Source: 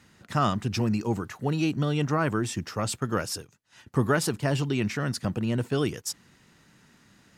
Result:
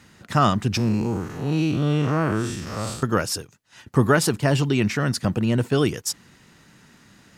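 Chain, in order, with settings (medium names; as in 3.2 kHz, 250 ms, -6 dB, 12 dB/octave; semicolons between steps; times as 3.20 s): 0.77–3.03 s: spectral blur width 168 ms; trim +6 dB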